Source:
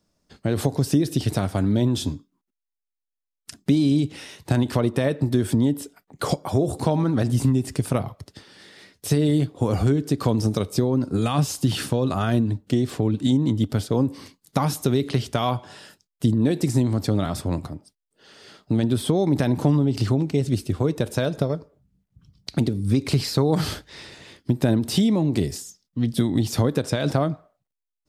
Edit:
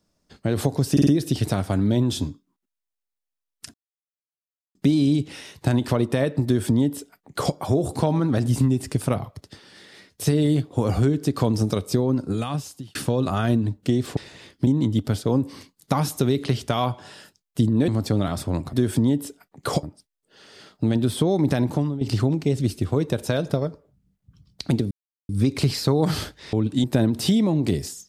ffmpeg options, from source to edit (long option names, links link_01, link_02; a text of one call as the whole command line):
ffmpeg -i in.wav -filter_complex "[0:a]asplit=15[link_01][link_02][link_03][link_04][link_05][link_06][link_07][link_08][link_09][link_10][link_11][link_12][link_13][link_14][link_15];[link_01]atrim=end=0.972[link_16];[link_02]atrim=start=0.918:end=0.972[link_17];[link_03]atrim=start=0.918:end=0.972[link_18];[link_04]atrim=start=0.918:end=3.59,asetpts=PTS-STARTPTS,afade=type=out:start_time=2.668:duration=0.004:curve=hsin,apad=pad_dur=1.01[link_19];[link_05]atrim=start=3.59:end=11.79,asetpts=PTS-STARTPTS,afade=type=in:duration=0.004:curve=hsin,afade=type=out:start_time=7.36:duration=0.84[link_20];[link_06]atrim=start=11.79:end=13.012,asetpts=PTS-STARTPTS,afade=type=in:duration=0.004:curve=hsin[link_21];[link_07]atrim=start=24.028:end=24.532[link_22];[link_08]atrim=start=13.318:end=16.532[link_23];[link_09]atrim=start=16.858:end=17.712[link_24];[link_10]atrim=start=5.288:end=6.392[link_25];[link_11]atrim=start=17.708:end=19.89,asetpts=PTS-STARTPTS,afade=type=out:start_time=1.772:duration=0.41:silence=0.251189[link_26];[link_12]atrim=start=19.89:end=22.79,asetpts=PTS-STARTPTS,afade=type=in:duration=0.004:curve=hsin:silence=0.251189,afade=type=out:start_time=2.896:duration=0.004:curve=hsin,apad=pad_dur=0.38[link_27];[link_13]atrim=start=22.79:end=24.032,asetpts=PTS-STARTPTS,afade=type=in:duration=0.004:curve=hsin[link_28];[link_14]atrim=start=13.008:end=13.322[link_29];[link_15]atrim=start=24.528[link_30];[link_16][link_17]acrossfade=duration=0.004:curve1=hsin:curve2=hsin[link_31];[link_31][link_18]acrossfade=duration=0.004:curve1=hsin:curve2=hsin[link_32];[link_19][link_20][link_21]concat=n=3:v=0:a=1[link_33];[link_32][link_33]acrossfade=duration=0.004:curve1=hsin:curve2=hsin[link_34];[link_34][link_22]acrossfade=duration=0.004:curve1=hsin:curve2=hsin[link_35];[link_35][link_23]acrossfade=duration=0.004:curve1=hsin:curve2=hsin[link_36];[link_36][link_24]acrossfade=duration=0.004:curve1=hsin:curve2=hsin[link_37];[link_37][link_25]acrossfade=duration=0.004:curve1=hsin:curve2=hsin[link_38];[link_26][link_27][link_28]concat=n=3:v=0:a=1[link_39];[link_38][link_39]acrossfade=duration=0.004:curve1=hsin:curve2=hsin[link_40];[link_40][link_29]acrossfade=duration=0.004:curve1=hsin:curve2=hsin[link_41];[link_41][link_30]acrossfade=duration=0.004:curve1=hsin:curve2=hsin" out.wav